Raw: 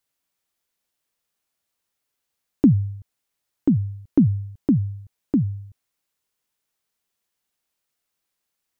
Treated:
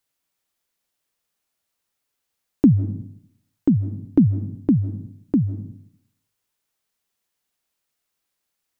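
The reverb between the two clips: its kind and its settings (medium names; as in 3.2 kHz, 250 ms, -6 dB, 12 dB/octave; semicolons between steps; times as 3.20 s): algorithmic reverb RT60 0.7 s, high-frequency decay 0.45×, pre-delay 115 ms, DRR 15 dB; trim +1 dB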